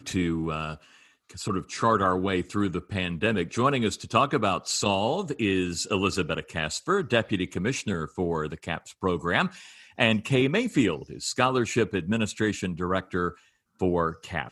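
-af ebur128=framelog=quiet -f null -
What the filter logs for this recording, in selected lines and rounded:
Integrated loudness:
  I:         -26.6 LUFS
  Threshold: -36.9 LUFS
Loudness range:
  LRA:         2.5 LU
  Threshold: -46.5 LUFS
  LRA low:   -27.9 LUFS
  LRA high:  -25.4 LUFS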